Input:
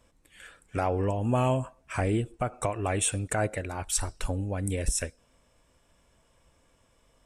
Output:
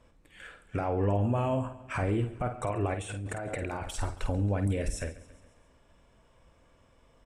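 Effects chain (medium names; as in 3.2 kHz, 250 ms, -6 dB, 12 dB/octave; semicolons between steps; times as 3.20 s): peak limiter -24.5 dBFS, peak gain reduction 11 dB; feedback delay 138 ms, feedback 58%, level -18.5 dB; 2.94–3.94 s: compressor with a negative ratio -38 dBFS, ratio -1; low-pass 2.5 kHz 6 dB/octave; doubling 50 ms -8.5 dB; trim +3 dB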